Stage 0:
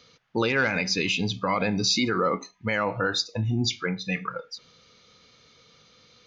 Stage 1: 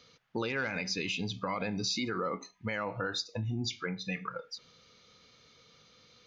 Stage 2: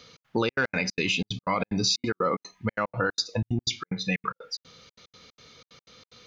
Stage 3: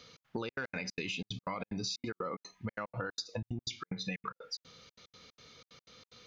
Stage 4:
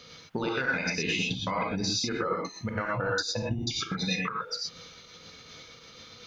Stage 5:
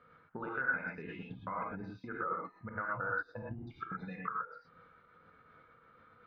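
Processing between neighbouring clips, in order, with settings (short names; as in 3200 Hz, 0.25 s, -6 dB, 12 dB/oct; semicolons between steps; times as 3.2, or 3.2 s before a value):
compressor 2:1, threshold -30 dBFS, peak gain reduction 6.5 dB; gain -4 dB
step gate "xx.xxx.x." 184 bpm -60 dB; gain +8.5 dB
compressor, threshold -30 dBFS, peak gain reduction 9.5 dB; gain -4.5 dB
non-linear reverb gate 0.14 s rising, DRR -3.5 dB; gain +5 dB
ladder low-pass 1600 Hz, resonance 60%; gain -2 dB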